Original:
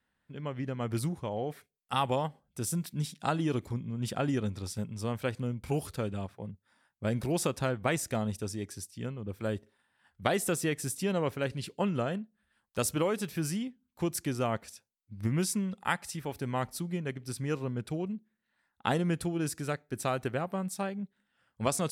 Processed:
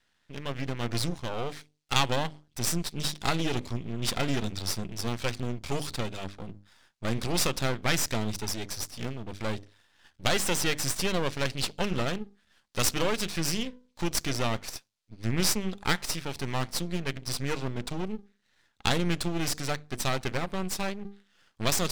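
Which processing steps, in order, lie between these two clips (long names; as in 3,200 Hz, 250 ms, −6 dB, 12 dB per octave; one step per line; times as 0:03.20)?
one-sided soft clipper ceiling −18.5 dBFS
low-pass filter 8,300 Hz
parametric band 4,400 Hz +12.5 dB 2.2 octaves
mains-hum notches 50/100/150/200/250/300 Hz
half-wave rectification
level +6.5 dB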